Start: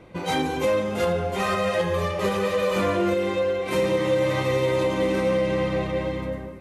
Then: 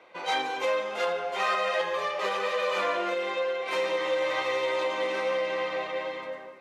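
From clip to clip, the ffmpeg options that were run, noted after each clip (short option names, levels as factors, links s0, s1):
-filter_complex "[0:a]highpass=240,acrossover=split=530 6200:gain=0.112 1 0.158[s0][s1][s2];[s0][s1][s2]amix=inputs=3:normalize=0"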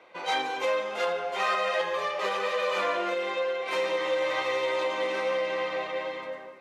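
-af anull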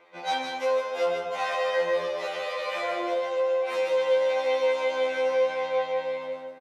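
-af "aecho=1:1:153:0.501,afftfilt=real='re*2*eq(mod(b,4),0)':imag='im*2*eq(mod(b,4),0)':win_size=2048:overlap=0.75"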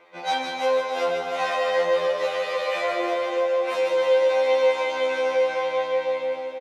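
-af "aecho=1:1:304|608|912|1216|1520|1824|2128:0.398|0.219|0.12|0.0662|0.0364|0.02|0.011,volume=1.41"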